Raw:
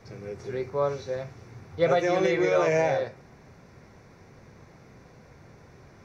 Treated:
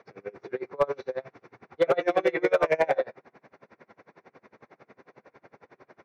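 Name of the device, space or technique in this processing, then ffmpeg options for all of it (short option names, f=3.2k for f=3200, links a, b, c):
helicopter radio: -af "highpass=330,lowpass=2.6k,aeval=exprs='val(0)*pow(10,-30*(0.5-0.5*cos(2*PI*11*n/s))/20)':c=same,asoftclip=type=hard:threshold=-21.5dB,volume=7.5dB"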